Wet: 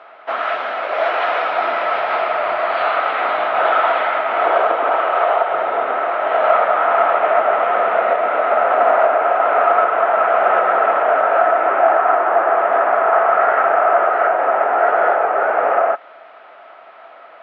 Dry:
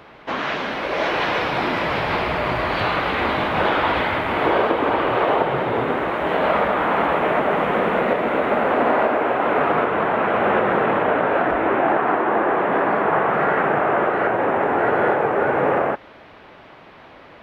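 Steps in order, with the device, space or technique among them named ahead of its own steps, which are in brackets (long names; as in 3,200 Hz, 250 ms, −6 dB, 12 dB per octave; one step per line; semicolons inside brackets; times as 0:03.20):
tin-can telephone (band-pass filter 610–3,100 Hz; hollow resonant body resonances 680/1,300 Hz, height 13 dB, ringing for 30 ms)
0:04.94–0:05.49: high-pass filter 220 Hz → 590 Hz 6 dB per octave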